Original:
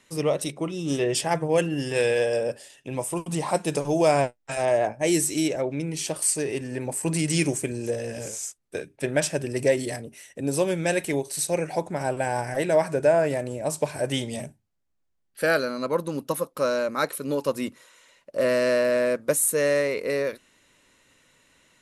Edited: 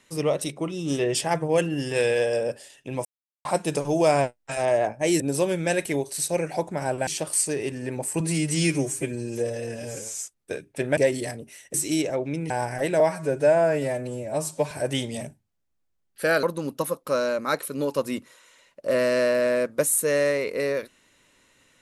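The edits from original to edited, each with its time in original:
3.05–3.45 s: mute
5.20–5.96 s: swap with 10.39–12.26 s
7.09–8.39 s: stretch 1.5×
9.21–9.62 s: delete
12.76–13.90 s: stretch 1.5×
15.62–15.93 s: delete

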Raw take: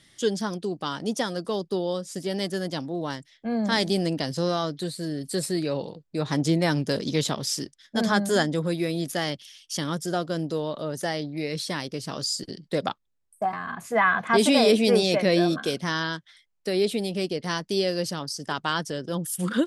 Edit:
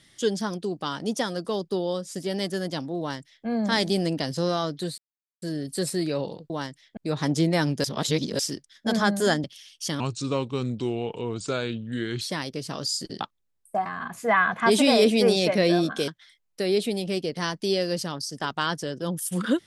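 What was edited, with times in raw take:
2.99–3.46 s: copy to 6.06 s
4.98 s: insert silence 0.44 s
6.93–7.48 s: reverse
8.53–9.33 s: delete
9.89–11.59 s: speed 77%
12.59–12.88 s: delete
15.75–16.15 s: delete

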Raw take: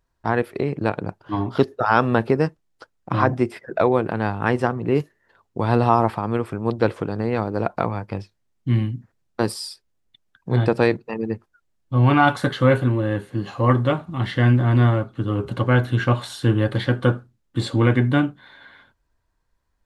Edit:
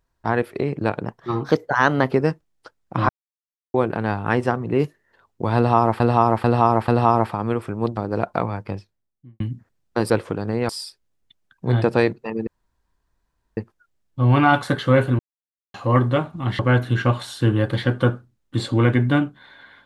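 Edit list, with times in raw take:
1.05–2.27 s: speed 115%
3.25–3.90 s: mute
5.72–6.16 s: loop, 4 plays
6.81–7.40 s: move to 9.53 s
8.06–8.83 s: studio fade out
11.31 s: insert room tone 1.10 s
12.93–13.48 s: mute
14.33–15.61 s: delete

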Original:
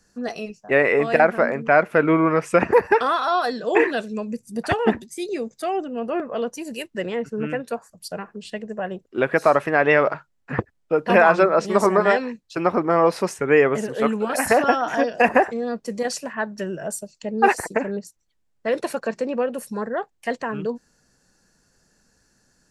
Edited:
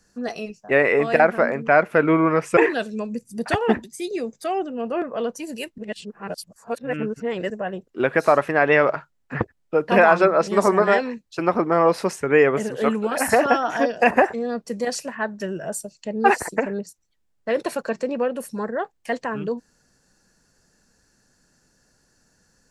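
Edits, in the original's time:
2.57–3.75 s: delete
6.96–8.68 s: reverse

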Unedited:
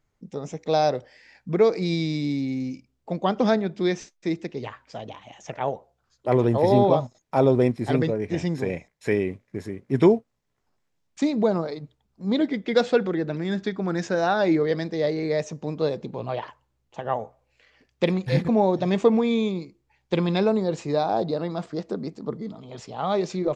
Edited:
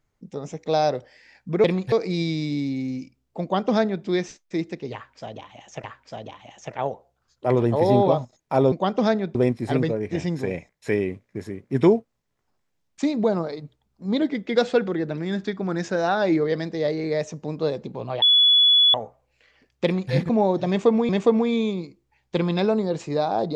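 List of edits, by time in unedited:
3.14–3.77 s: copy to 7.54 s
4.66–5.56 s: loop, 2 plays
16.41–17.13 s: bleep 3.41 kHz -12.5 dBFS
18.03–18.31 s: copy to 1.64 s
18.87–19.28 s: loop, 2 plays

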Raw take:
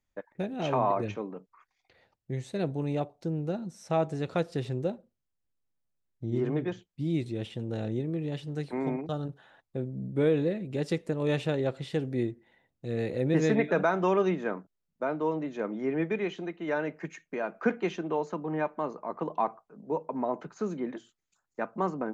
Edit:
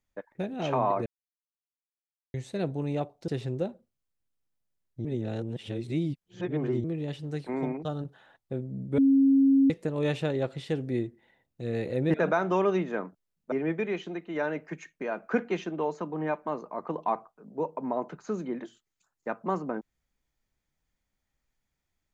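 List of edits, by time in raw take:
1.06–2.34 s: mute
3.28–4.52 s: delete
6.29–8.08 s: reverse
10.22–10.94 s: bleep 272 Hz -17 dBFS
13.38–13.66 s: delete
15.04–15.84 s: delete

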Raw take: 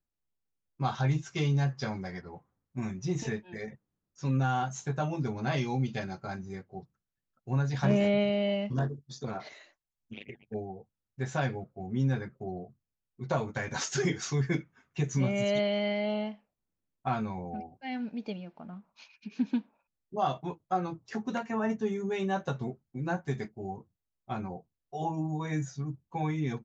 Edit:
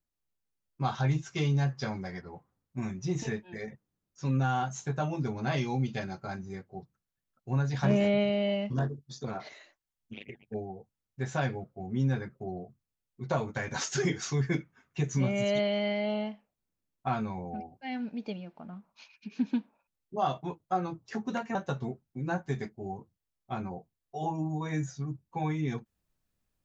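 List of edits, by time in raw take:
21.55–22.34 s: delete

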